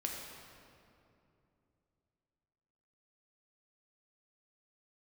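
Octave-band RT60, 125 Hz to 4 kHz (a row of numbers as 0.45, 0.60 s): 3.6, 3.4, 3.0, 2.5, 2.1, 1.6 s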